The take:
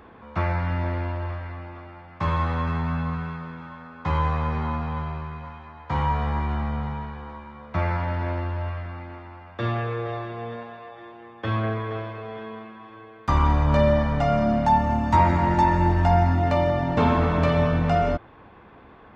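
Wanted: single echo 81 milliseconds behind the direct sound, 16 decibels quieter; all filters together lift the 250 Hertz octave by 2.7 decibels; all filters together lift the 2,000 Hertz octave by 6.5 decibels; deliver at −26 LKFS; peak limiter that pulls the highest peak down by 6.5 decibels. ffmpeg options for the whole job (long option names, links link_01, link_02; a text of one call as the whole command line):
ffmpeg -i in.wav -af "equalizer=frequency=250:width_type=o:gain=3.5,equalizer=frequency=2000:width_type=o:gain=8,alimiter=limit=-11dB:level=0:latency=1,aecho=1:1:81:0.158,volume=-2.5dB" out.wav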